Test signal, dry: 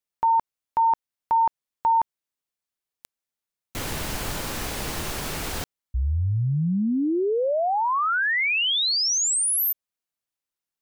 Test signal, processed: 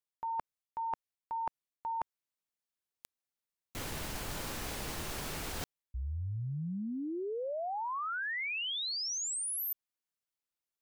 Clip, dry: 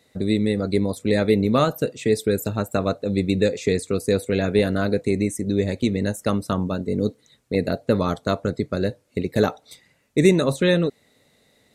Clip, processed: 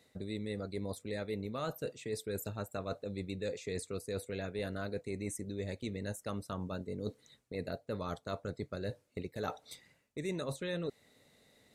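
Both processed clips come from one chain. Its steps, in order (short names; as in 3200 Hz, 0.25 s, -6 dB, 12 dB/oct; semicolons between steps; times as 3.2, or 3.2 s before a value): dynamic EQ 240 Hz, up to -5 dB, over -33 dBFS, Q 0.93; reverse; compressor 6:1, threshold -30 dBFS; reverse; gain -5.5 dB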